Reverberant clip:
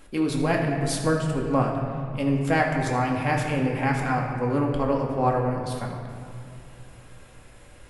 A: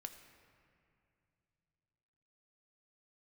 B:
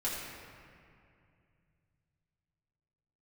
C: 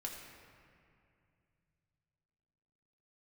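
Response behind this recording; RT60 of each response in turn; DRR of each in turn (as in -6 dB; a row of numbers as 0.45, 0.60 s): C; 2.6, 2.4, 2.4 s; 6.0, -8.5, -1.0 dB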